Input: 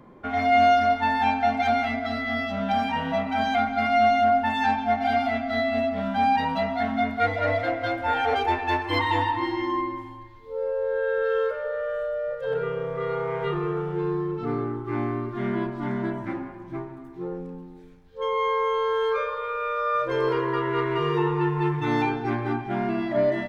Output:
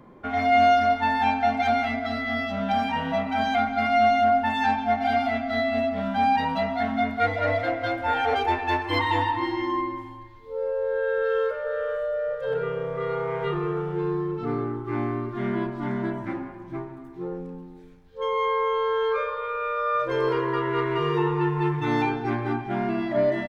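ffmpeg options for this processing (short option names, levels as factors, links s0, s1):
-filter_complex "[0:a]asplit=2[s0][s1];[s1]afade=t=in:st=11.2:d=0.01,afade=t=out:st=12.04:d=0.01,aecho=0:1:460|920|1380:0.237137|0.0592843|0.0148211[s2];[s0][s2]amix=inputs=2:normalize=0,asettb=1/sr,asplit=3[s3][s4][s5];[s3]atrim=end=18.454[s6];[s4]atrim=start=18.45:end=20,asetpts=PTS-STARTPTS,afade=t=in:d=0.004:c=qsin,afade=t=out:st=1.546:d=0.004:c=qsin,lowpass=4800[s7];[s5]atrim=start=19.996[s8];[s6][s7]acrossfade=d=0.004:c1=hsin:c2=qsin[s9];[s9][s8]acrossfade=d=0.004:c1=qsin:c2=hsin"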